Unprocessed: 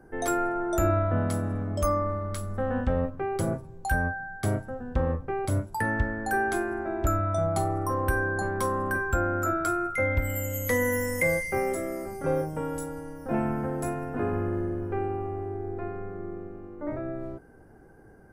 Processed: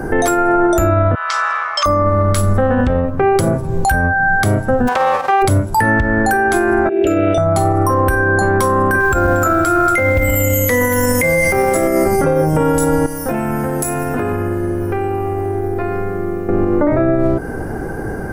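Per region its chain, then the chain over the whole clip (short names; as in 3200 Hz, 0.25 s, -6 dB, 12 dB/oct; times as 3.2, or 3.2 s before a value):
1.15–1.86 elliptic band-pass 1100–5800 Hz, stop band 60 dB + hard clip -26 dBFS
4.87–5.41 spectral whitening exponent 0.3 + band-pass 860 Hz, Q 1.8 + comb 5.3 ms, depth 35%
6.89–7.38 double band-pass 1100 Hz, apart 2.7 oct + fast leveller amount 100%
9–11.87 echo with dull and thin repeats by turns 0.116 s, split 1600 Hz, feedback 51%, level -8 dB + compressor 16:1, threshold -27 dBFS + short-mantissa float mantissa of 4-bit
13.06–16.49 pre-emphasis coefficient 0.8 + compressor 12:1, threshold -44 dBFS
whole clip: compressor 10:1, threshold -38 dBFS; maximiser +34.5 dB; gain -4.5 dB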